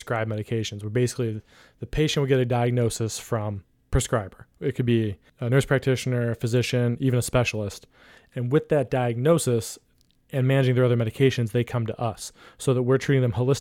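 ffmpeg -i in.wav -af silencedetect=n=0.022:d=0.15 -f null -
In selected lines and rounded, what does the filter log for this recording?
silence_start: 1.39
silence_end: 1.82 | silence_duration: 0.43
silence_start: 3.59
silence_end: 3.93 | silence_duration: 0.34
silence_start: 4.41
silence_end: 4.61 | silence_duration: 0.20
silence_start: 5.14
silence_end: 5.41 | silence_duration: 0.28
silence_start: 7.84
silence_end: 8.36 | silence_duration: 0.53
silence_start: 9.75
silence_end: 10.33 | silence_duration: 0.58
silence_start: 12.29
silence_end: 12.61 | silence_duration: 0.32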